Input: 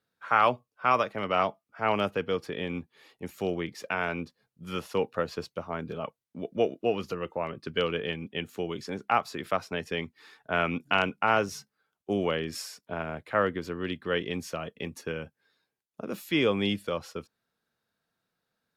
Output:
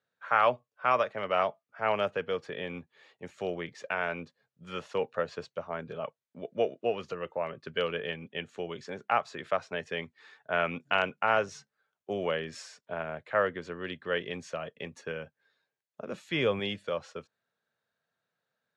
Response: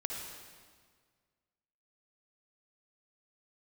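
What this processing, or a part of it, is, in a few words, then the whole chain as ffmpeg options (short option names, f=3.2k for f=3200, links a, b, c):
car door speaker: -filter_complex "[0:a]asettb=1/sr,asplit=3[a][b][c];[a]atrim=end=16.074[d];[b]atrim=start=16.07:end=16.6,asetpts=PTS-STARTPTS,afade=t=in:d=0.004:c=qsin,afade=t=out:st=0.526:d=0.004:c=qsin,lowshelf=f=110:g=12[e];[c]atrim=start=16.596[f];[d][e]acrossfade=d=0.004:c1=hsin:c2=qsin[g];[g][f]acrossfade=d=0.004:c1=qsin:c2=hsin,highpass=110,equalizer=f=200:t=q:w=4:g=-5,equalizer=f=300:t=q:w=4:g=-8,equalizer=f=590:t=q:w=4:g=5,equalizer=f=1.7k:t=q:w=4:g=4,equalizer=f=5.1k:t=q:w=4:g=-6,lowpass=f=7.3k:w=0.5412,lowpass=f=7.3k:w=1.3066,volume=-3dB"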